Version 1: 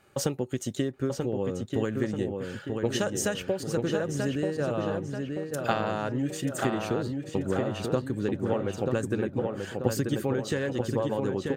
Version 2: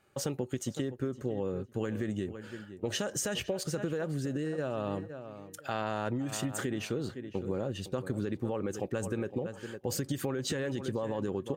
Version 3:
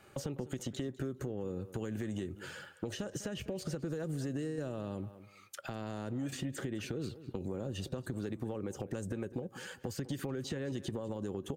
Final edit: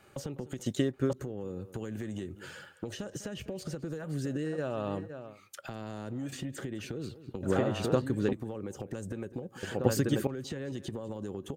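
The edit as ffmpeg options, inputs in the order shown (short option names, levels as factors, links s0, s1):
-filter_complex "[0:a]asplit=3[s0][s1][s2];[2:a]asplit=5[s3][s4][s5][s6][s7];[s3]atrim=end=0.662[s8];[s0]atrim=start=0.658:end=1.132[s9];[s4]atrim=start=1.128:end=4.13[s10];[1:a]atrim=start=3.97:end=5.41[s11];[s5]atrim=start=5.25:end=7.432[s12];[s1]atrim=start=7.428:end=8.332[s13];[s6]atrim=start=8.328:end=9.632[s14];[s2]atrim=start=9.628:end=10.272[s15];[s7]atrim=start=10.268[s16];[s8][s9]acrossfade=d=0.004:c1=hsin:c2=hsin[s17];[s17][s10]acrossfade=d=0.004:c1=hsin:c2=hsin[s18];[s18][s11]acrossfade=d=0.16:c1=tri:c2=tri[s19];[s19][s12]acrossfade=d=0.16:c1=tri:c2=tri[s20];[s20][s13]acrossfade=d=0.004:c1=hsin:c2=hsin[s21];[s21][s14]acrossfade=d=0.004:c1=hsin:c2=hsin[s22];[s22][s15]acrossfade=d=0.004:c1=hsin:c2=hsin[s23];[s23][s16]acrossfade=d=0.004:c1=hsin:c2=hsin"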